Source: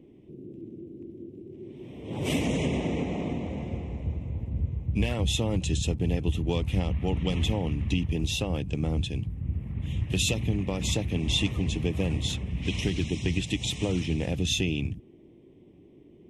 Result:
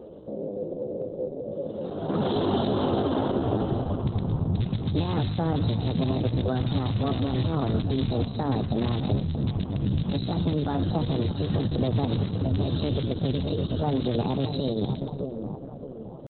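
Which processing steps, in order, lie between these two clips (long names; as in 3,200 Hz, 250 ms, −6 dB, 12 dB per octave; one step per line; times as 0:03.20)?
loose part that buzzes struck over −23 dBFS, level −18 dBFS
in parallel at −0.5 dB: downward compressor 5 to 1, threshold −37 dBFS, peak gain reduction 15 dB
on the sum: low-pass filter 5,600 Hz 12 dB per octave
hum removal 158.7 Hz, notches 22
on a send: echo with a time of its own for lows and highs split 810 Hz, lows 620 ms, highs 115 ms, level −10 dB
on the sum: brickwall limiter −20.5 dBFS, peak gain reduction 9.5 dB
pitch shifter +7 semitones
high-shelf EQ 3,900 Hz −7.5 dB
level +5.5 dB
Opus 8 kbit/s 48,000 Hz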